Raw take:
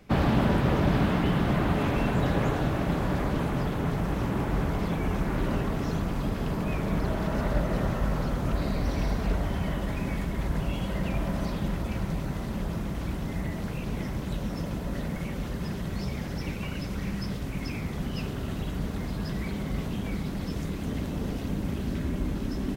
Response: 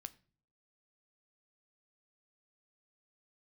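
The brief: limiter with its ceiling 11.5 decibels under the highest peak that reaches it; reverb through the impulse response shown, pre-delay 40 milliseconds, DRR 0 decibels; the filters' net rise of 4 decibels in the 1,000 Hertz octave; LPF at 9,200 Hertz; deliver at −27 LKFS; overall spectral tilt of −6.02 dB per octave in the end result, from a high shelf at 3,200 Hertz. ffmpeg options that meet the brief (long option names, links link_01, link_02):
-filter_complex "[0:a]lowpass=9200,equalizer=frequency=1000:width_type=o:gain=6,highshelf=frequency=3200:gain=-9,alimiter=limit=-22dB:level=0:latency=1,asplit=2[link_01][link_02];[1:a]atrim=start_sample=2205,adelay=40[link_03];[link_02][link_03]afir=irnorm=-1:irlink=0,volume=5dB[link_04];[link_01][link_04]amix=inputs=2:normalize=0,volume=2dB"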